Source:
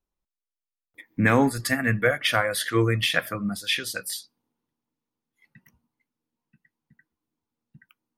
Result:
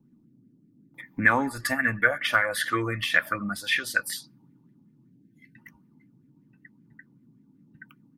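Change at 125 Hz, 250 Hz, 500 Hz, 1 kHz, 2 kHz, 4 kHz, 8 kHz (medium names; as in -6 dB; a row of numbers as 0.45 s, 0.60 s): -9.5 dB, -6.0 dB, -6.5 dB, +0.5 dB, +3.0 dB, -4.5 dB, -3.5 dB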